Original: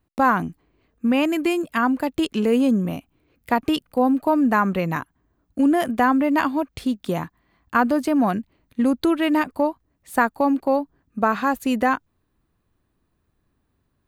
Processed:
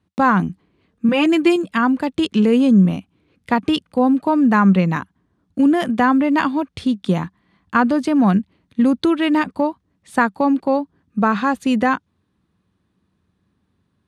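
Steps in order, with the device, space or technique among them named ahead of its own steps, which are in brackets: 1.08–1.56 comb 5.9 ms, depth 72%; car door speaker (speaker cabinet 84–9200 Hz, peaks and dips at 85 Hz +6 dB, 190 Hz +10 dB, 660 Hz -4 dB, 3500 Hz +4 dB, 7400 Hz -4 dB); gain +2.5 dB

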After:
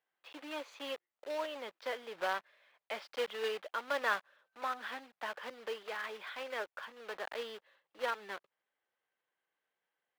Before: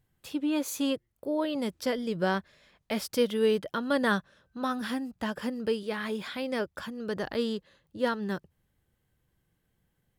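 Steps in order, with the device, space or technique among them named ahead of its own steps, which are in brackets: early digital voice recorder (BPF 290–4000 Hz; block floating point 3-bit); three-band isolator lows -21 dB, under 510 Hz, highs -16 dB, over 3800 Hz; gain -3.5 dB

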